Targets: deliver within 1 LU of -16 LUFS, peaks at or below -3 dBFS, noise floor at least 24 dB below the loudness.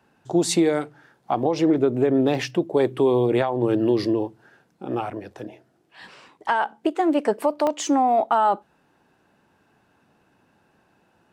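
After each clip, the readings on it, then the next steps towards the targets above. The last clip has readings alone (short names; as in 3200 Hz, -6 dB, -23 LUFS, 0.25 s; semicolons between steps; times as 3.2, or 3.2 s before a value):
dropouts 2; longest dropout 1.2 ms; loudness -22.0 LUFS; peak -10.0 dBFS; loudness target -16.0 LUFS
-> interpolate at 2.35/7.67, 1.2 ms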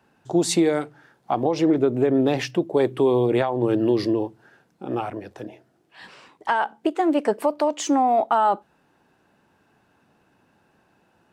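dropouts 0; loudness -22.0 LUFS; peak -10.0 dBFS; loudness target -16.0 LUFS
-> gain +6 dB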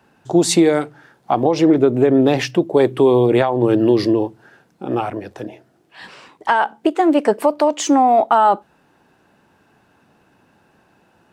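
loudness -16.0 LUFS; peak -4.0 dBFS; noise floor -58 dBFS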